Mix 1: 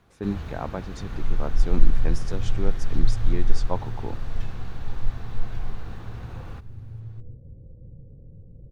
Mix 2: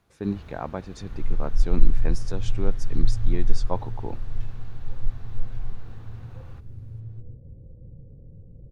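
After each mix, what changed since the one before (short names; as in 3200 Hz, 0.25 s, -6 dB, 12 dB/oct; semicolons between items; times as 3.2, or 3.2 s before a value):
first sound -8.5 dB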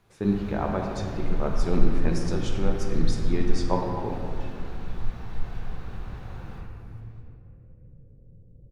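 second sound -6.0 dB; reverb: on, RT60 2.3 s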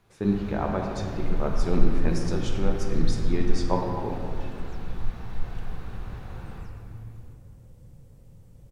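second sound: remove Chebyshev low-pass 500 Hz, order 3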